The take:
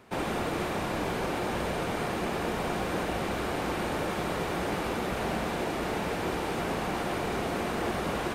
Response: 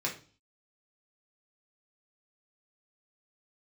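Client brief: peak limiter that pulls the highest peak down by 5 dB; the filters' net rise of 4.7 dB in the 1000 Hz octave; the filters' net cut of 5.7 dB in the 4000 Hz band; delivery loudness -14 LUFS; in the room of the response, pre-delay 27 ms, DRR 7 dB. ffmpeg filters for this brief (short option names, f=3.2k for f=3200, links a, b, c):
-filter_complex "[0:a]equalizer=f=1k:t=o:g=6.5,equalizer=f=4k:t=o:g=-8.5,alimiter=limit=-21dB:level=0:latency=1,asplit=2[a][b];[1:a]atrim=start_sample=2205,adelay=27[c];[b][c]afir=irnorm=-1:irlink=0,volume=-12.5dB[d];[a][d]amix=inputs=2:normalize=0,volume=15.5dB"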